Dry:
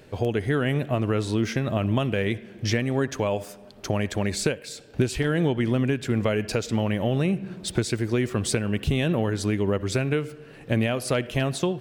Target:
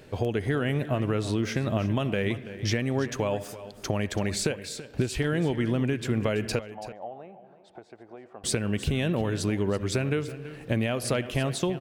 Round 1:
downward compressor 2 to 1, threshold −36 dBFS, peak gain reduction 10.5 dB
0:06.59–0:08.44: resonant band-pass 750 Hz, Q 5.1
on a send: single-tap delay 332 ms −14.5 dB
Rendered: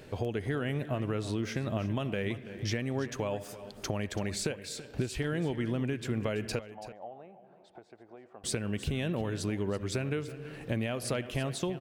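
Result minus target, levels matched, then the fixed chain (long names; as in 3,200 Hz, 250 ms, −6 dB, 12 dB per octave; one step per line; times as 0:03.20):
downward compressor: peak gain reduction +5.5 dB
downward compressor 2 to 1, threshold −24.5 dBFS, peak gain reduction 5 dB
0:06.59–0:08.44: resonant band-pass 750 Hz, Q 5.1
on a send: single-tap delay 332 ms −14.5 dB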